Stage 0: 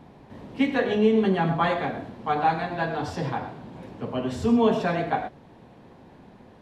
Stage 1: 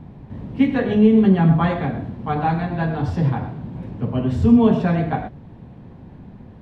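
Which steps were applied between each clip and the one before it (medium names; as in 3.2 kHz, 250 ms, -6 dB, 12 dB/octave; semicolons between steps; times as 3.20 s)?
tone controls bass +15 dB, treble -7 dB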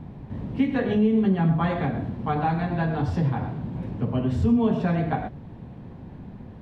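compression 2:1, threshold -23 dBFS, peak gain reduction 8.5 dB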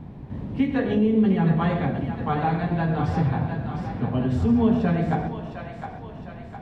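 two-band feedback delay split 510 Hz, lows 177 ms, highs 709 ms, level -7 dB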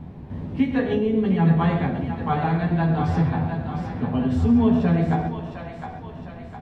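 doubling 12 ms -5.5 dB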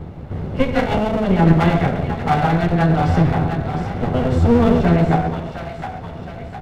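comb filter that takes the minimum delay 1.4 ms; trim +7 dB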